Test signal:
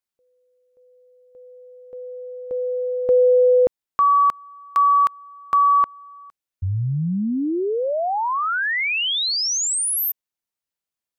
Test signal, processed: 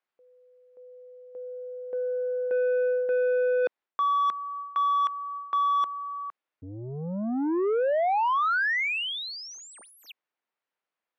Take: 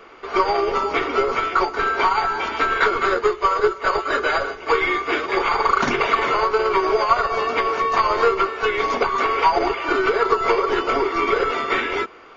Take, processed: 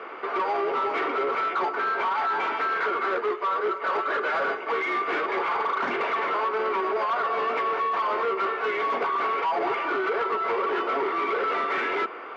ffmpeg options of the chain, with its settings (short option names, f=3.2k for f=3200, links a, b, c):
-af "lowshelf=f=420:g=-4.5,alimiter=limit=-9.5dB:level=0:latency=1:release=382,areverse,acompressor=threshold=-27dB:ratio=8:attack=72:release=409:knee=1:detection=peak,areverse,asoftclip=type=tanh:threshold=-30dB,highpass=280,lowpass=2.1k,volume=8.5dB"